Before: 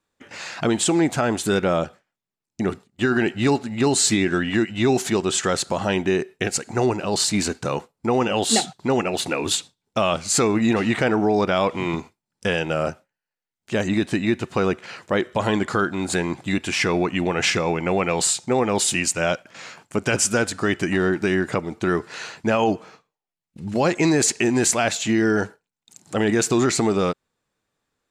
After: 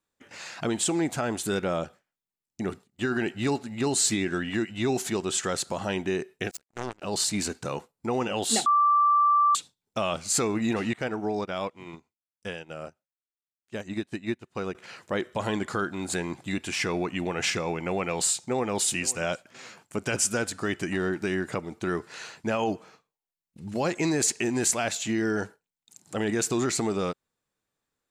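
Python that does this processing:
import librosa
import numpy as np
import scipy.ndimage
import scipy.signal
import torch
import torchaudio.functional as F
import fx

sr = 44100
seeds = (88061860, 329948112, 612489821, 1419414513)

y = fx.power_curve(x, sr, exponent=3.0, at=(6.51, 7.02))
y = fx.upward_expand(y, sr, threshold_db=-31.0, expansion=2.5, at=(10.93, 14.75))
y = fx.echo_throw(y, sr, start_s=18.28, length_s=0.45, ms=520, feedback_pct=25, wet_db=-18.0)
y = fx.edit(y, sr, fx.bleep(start_s=8.66, length_s=0.89, hz=1170.0, db=-10.0), tone=tone)
y = fx.high_shelf(y, sr, hz=8700.0, db=8.0)
y = y * 10.0 ** (-7.5 / 20.0)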